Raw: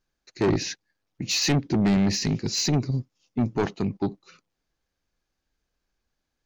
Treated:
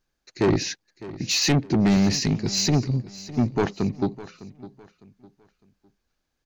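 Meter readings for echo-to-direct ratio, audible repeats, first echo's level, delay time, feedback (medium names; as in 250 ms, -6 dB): -16.5 dB, 2, -17.0 dB, 606 ms, 32%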